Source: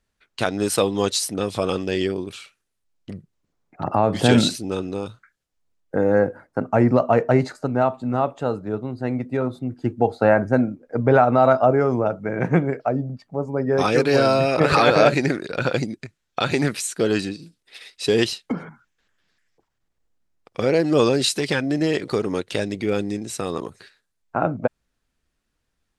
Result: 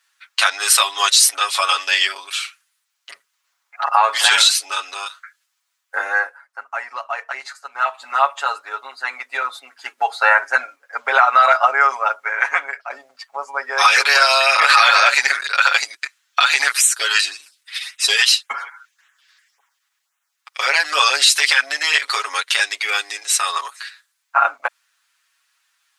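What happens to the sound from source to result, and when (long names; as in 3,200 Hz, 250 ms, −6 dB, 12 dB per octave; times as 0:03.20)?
0:06.03–0:08.04: duck −12 dB, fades 0.36 s
0:12.42–0:12.90: fade out, to −12.5 dB
0:16.71–0:20.60: auto-filter notch sine 1.8 Hz 510–4,800 Hz
whole clip: high-pass filter 1,100 Hz 24 dB per octave; comb filter 7.2 ms, depth 93%; boost into a limiter +14 dB; level −1 dB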